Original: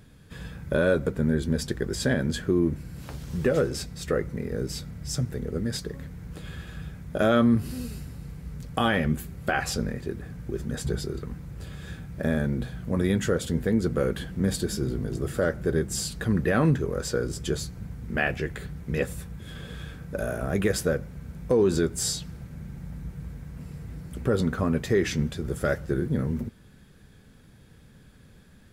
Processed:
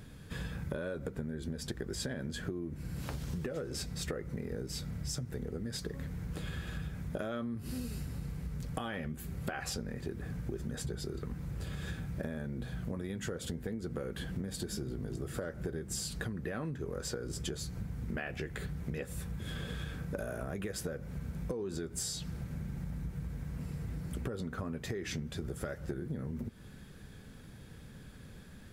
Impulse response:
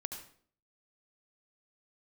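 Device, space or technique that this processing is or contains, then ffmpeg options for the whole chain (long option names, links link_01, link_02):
serial compression, leveller first: -af "acompressor=threshold=-26dB:ratio=6,acompressor=threshold=-37dB:ratio=6,volume=2dB"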